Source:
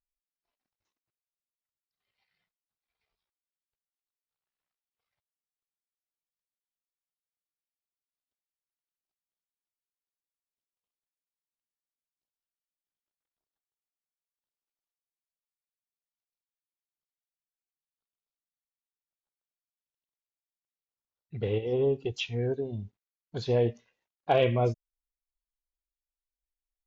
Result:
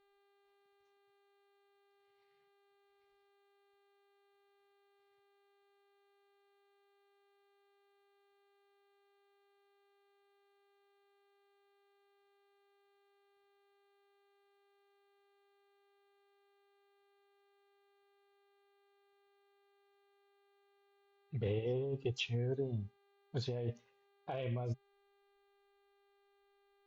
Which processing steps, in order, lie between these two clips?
bell 130 Hz +5.5 dB 0.44 oct; negative-ratio compressor -28 dBFS, ratio -1; buzz 400 Hz, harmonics 11, -66 dBFS -6 dB/oct; gain -8 dB

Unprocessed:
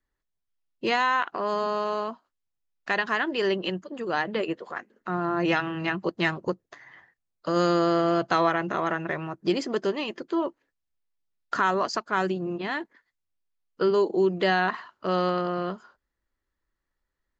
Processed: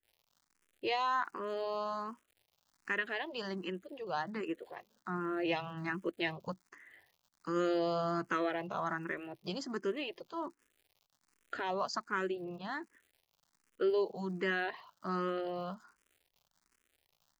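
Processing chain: crackle 150/s -45 dBFS; endless phaser +1.3 Hz; gain -7 dB

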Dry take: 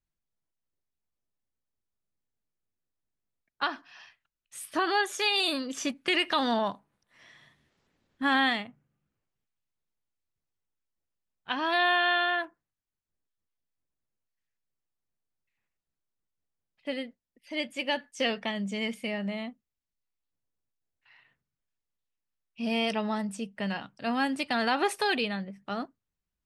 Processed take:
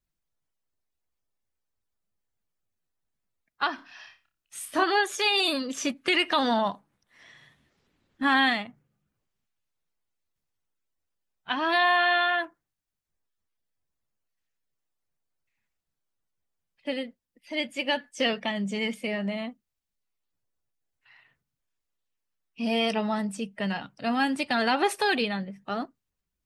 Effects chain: bin magnitudes rounded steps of 15 dB; 3.75–4.84 flutter echo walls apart 5 m, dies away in 0.28 s; gain +3 dB

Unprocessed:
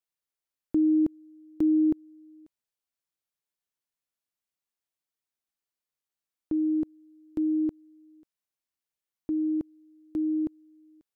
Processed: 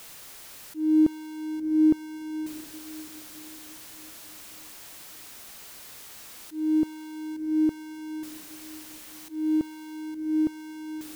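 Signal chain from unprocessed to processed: zero-crossing step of -41 dBFS; auto swell 0.262 s; diffused feedback echo 0.663 s, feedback 46%, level -15 dB; gain +4 dB

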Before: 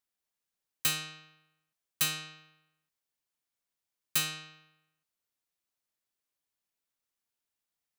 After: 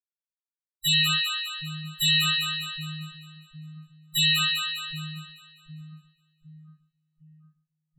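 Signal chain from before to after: fuzz box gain 49 dB, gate -48 dBFS; loudest bins only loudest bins 8; split-band echo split 650 Hz, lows 0.759 s, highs 0.202 s, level -4 dB

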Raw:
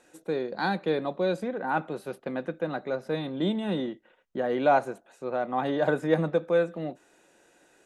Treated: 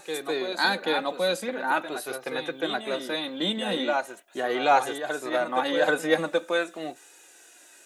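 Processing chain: tilt +4 dB/oct; on a send: reverse echo 0.782 s -7 dB; on the sum: flange 0.42 Hz, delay 2.3 ms, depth 1.7 ms, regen -28%; gain +7.5 dB

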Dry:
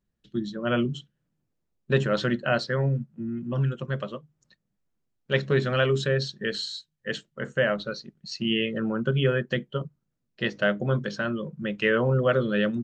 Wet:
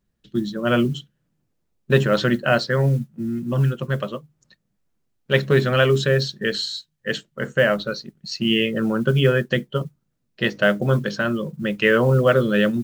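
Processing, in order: modulation noise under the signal 33 dB; gain +6 dB

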